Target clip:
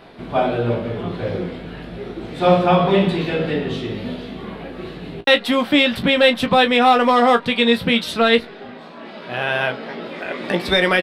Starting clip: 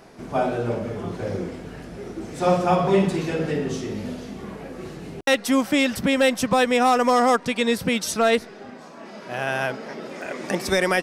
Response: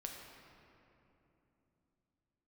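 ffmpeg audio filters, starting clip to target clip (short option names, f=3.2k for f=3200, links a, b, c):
-filter_complex "[0:a]highshelf=f=4.8k:t=q:w=3:g=-9,asplit=2[a][b];[b]aecho=0:1:17|35:0.422|0.178[c];[a][c]amix=inputs=2:normalize=0,volume=3dB"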